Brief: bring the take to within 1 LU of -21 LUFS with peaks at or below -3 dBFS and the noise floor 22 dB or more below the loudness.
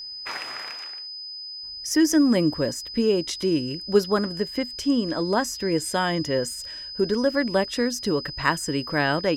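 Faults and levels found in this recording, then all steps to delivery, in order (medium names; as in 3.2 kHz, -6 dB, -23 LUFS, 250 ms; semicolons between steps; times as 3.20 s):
steady tone 5 kHz; tone level -34 dBFS; loudness -24.5 LUFS; peak level -5.5 dBFS; loudness target -21.0 LUFS
-> band-stop 5 kHz, Q 30; trim +3.5 dB; peak limiter -3 dBFS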